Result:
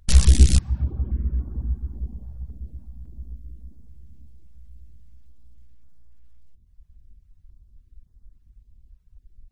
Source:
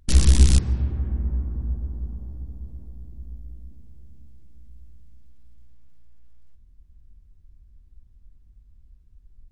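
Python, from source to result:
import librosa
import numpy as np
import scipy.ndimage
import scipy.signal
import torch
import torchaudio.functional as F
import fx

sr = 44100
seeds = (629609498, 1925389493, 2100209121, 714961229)

y = fx.dereverb_blind(x, sr, rt60_s=0.8)
y = fx.filter_held_notch(y, sr, hz=3.6, low_hz=310.0, high_hz=2600.0)
y = y * librosa.db_to_amplitude(2.5)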